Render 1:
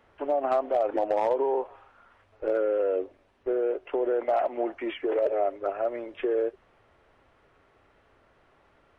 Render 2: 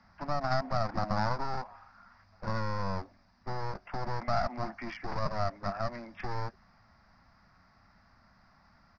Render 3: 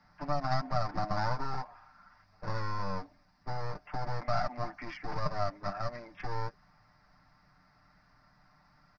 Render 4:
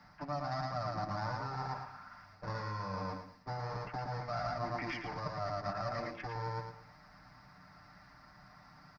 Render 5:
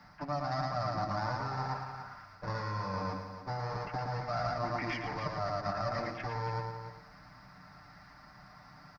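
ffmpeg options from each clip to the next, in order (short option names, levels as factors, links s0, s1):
-filter_complex "[0:a]acrossover=split=180[s0][s1];[s1]aeval=exprs='clip(val(0),-1,0.0224)':c=same[s2];[s0][s2]amix=inputs=2:normalize=0,firequalizer=gain_entry='entry(140,0);entry(200,8);entry(290,-10);entry(420,-23);entry(690,-5);entry(1100,-2);entry(2000,-3);entry(3100,-17);entry(4900,14);entry(8400,-29)':delay=0.05:min_phase=1,volume=1.41"
-af "aecho=1:1:6.7:0.71,volume=0.708"
-af "aecho=1:1:113|226|339|452:0.631|0.177|0.0495|0.0139,areverse,acompressor=threshold=0.0141:ratio=5,areverse,highpass=43,volume=1.88"
-af "aecho=1:1:288:0.316,volume=1.41"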